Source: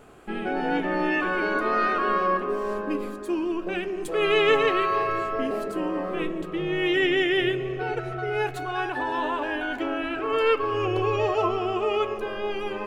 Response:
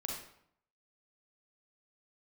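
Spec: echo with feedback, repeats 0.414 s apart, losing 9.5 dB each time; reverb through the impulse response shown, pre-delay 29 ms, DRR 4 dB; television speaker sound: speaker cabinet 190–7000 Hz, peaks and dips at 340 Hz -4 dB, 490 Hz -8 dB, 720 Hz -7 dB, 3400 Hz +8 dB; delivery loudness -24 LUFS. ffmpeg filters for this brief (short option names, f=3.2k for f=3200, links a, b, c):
-filter_complex "[0:a]aecho=1:1:414|828|1242|1656:0.335|0.111|0.0365|0.012,asplit=2[a][b];[1:a]atrim=start_sample=2205,adelay=29[c];[b][c]afir=irnorm=-1:irlink=0,volume=-4.5dB[d];[a][d]amix=inputs=2:normalize=0,highpass=f=190:w=0.5412,highpass=f=190:w=1.3066,equalizer=f=340:t=q:w=4:g=-4,equalizer=f=490:t=q:w=4:g=-8,equalizer=f=720:t=q:w=4:g=-7,equalizer=f=3.4k:t=q:w=4:g=8,lowpass=f=7k:w=0.5412,lowpass=f=7k:w=1.3066,volume=0.5dB"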